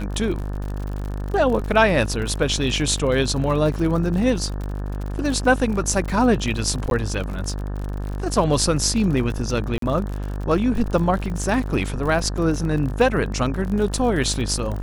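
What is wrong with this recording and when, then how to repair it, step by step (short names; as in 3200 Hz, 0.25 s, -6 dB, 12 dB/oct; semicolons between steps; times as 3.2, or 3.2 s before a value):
buzz 50 Hz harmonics 36 -27 dBFS
crackle 55/s -28 dBFS
6.9–6.91 gap 12 ms
9.78–9.82 gap 43 ms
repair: de-click; de-hum 50 Hz, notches 36; interpolate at 6.9, 12 ms; interpolate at 9.78, 43 ms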